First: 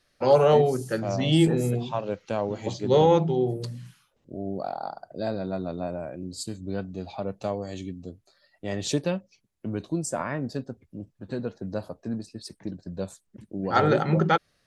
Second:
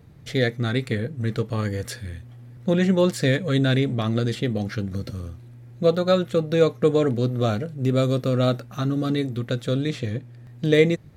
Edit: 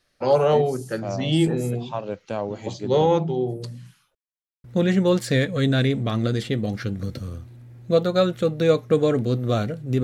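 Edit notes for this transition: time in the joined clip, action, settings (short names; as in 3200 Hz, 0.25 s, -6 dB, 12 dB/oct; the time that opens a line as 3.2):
first
4.15–4.64 mute
4.64 switch to second from 2.56 s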